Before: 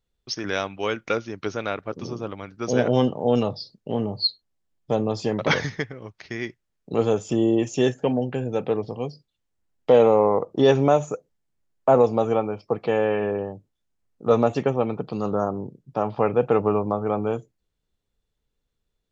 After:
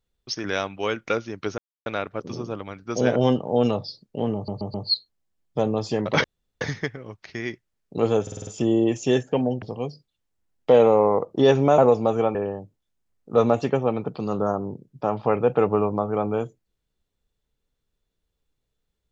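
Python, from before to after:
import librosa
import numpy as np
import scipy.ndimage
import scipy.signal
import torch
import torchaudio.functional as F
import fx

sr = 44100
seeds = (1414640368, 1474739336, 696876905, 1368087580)

y = fx.edit(x, sr, fx.insert_silence(at_s=1.58, length_s=0.28),
    fx.stutter(start_s=4.07, slice_s=0.13, count=4),
    fx.insert_room_tone(at_s=5.57, length_s=0.37),
    fx.stutter(start_s=7.18, slice_s=0.05, count=6),
    fx.cut(start_s=8.33, length_s=0.49),
    fx.cut(start_s=10.98, length_s=0.92),
    fx.cut(start_s=12.47, length_s=0.81), tone=tone)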